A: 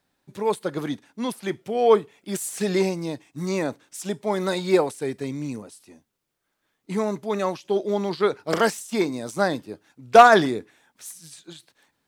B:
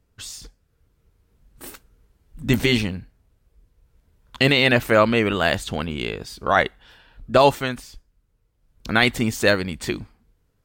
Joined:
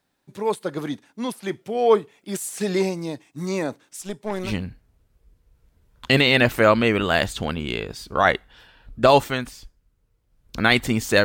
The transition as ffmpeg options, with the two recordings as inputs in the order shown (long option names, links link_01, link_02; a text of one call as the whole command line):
ffmpeg -i cue0.wav -i cue1.wav -filter_complex "[0:a]asettb=1/sr,asplit=3[link_01][link_02][link_03];[link_01]atrim=end=4.014[link_04];[link_02]atrim=start=4.01:end=4.53,asetpts=PTS-STARTPTS,afade=type=in:duration=0.004:curve=qsin,afade=type=out:start_time=0.516:duration=0.004:curve=qsin,aeval=exprs='(tanh(10*val(0)+0.7)-tanh(0.7))/10':channel_layout=same[link_05];[link_03]atrim=start=4.526[link_06];[link_04][link_05]acrossfade=duration=0.004:curve1=hsin:curve2=qsin[link_07];[link_07][link_06]acrossfade=duration=0.004:curve1=qsin:curve2=hsin,apad=whole_dur=11.24,atrim=end=11.24,atrim=end=4.53,asetpts=PTS-STARTPTS[link_08];[1:a]atrim=start=2.74:end=9.55,asetpts=PTS-STARTPTS[link_09];[link_08][link_09]acrossfade=duration=0.1:curve1=tri:curve2=tri" out.wav